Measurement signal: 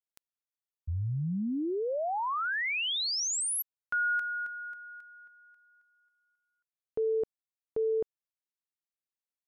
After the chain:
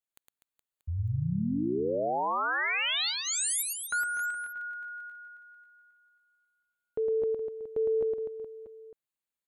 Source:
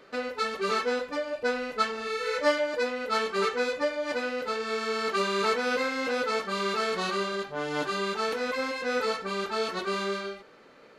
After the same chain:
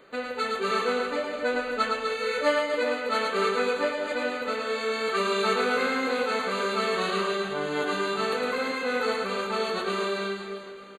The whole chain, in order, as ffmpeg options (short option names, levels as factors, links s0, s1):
-af "asuperstop=centerf=5400:order=8:qfactor=3.2,aecho=1:1:110|247.5|419.4|634.2|902.8:0.631|0.398|0.251|0.158|0.1"